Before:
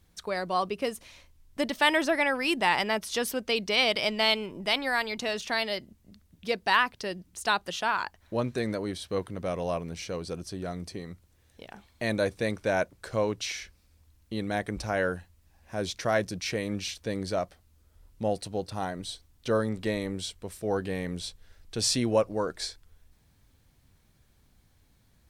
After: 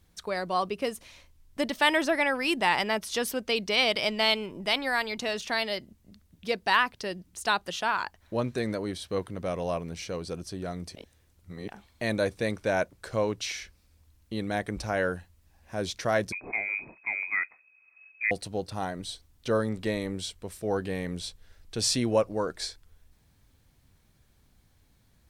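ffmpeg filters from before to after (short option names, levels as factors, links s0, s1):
-filter_complex "[0:a]asettb=1/sr,asplit=3[s0][s1][s2];[s0]atrim=end=16.324[s3];[s1]atrim=start=16.32:end=18.31,asetpts=PTS-STARTPTS,afade=t=in:d=0.004:c=qsin,afade=t=out:st=1.986:d=0.004:c=qsin,lowpass=f=2200:t=q:w=0.5098,lowpass=f=2200:t=q:w=0.6013,lowpass=f=2200:t=q:w=0.9,lowpass=f=2200:t=q:w=2.563,afreqshift=-2600[s4];[s2]atrim=start=18.306[s5];[s3][s4]acrossfade=d=0.004:c1=hsin:c2=qsin[s6];[s6][s5]acrossfade=d=0.004:c1=qsin:c2=hsin,asplit=3[s7][s8][s9];[s7]atrim=end=10.952[s10];[s8]atrim=start=10.948:end=11.682,asetpts=PTS-STARTPTS,areverse[s11];[s9]atrim=start=11.678[s12];[s10][s11]acrossfade=d=0.004:c1=hsin:c2=hsin[s13];[s13][s12]acrossfade=d=0.004:c1=hsin:c2=hsin"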